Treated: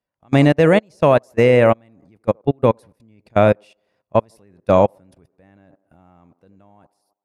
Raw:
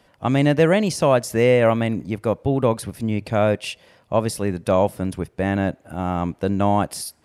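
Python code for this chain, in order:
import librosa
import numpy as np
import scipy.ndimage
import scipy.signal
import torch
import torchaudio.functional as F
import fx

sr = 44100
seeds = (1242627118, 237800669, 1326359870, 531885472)

y = fx.fade_out_tail(x, sr, length_s=0.96)
y = fx.notch(y, sr, hz=3100.0, q=13.0)
y = fx.echo_wet_bandpass(y, sr, ms=81, feedback_pct=54, hz=590.0, wet_db=-13.0)
y = fx.level_steps(y, sr, step_db=18)
y = fx.high_shelf(y, sr, hz=6800.0, db=-4.5)
y = fx.upward_expand(y, sr, threshold_db=-32.0, expansion=2.5)
y = y * 10.0 ** (8.0 / 20.0)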